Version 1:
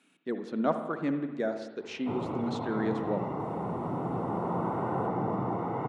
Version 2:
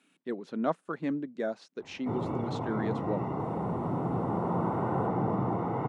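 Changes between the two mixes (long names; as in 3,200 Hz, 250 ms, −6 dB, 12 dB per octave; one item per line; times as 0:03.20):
background: add low-shelf EQ 160 Hz +6 dB
reverb: off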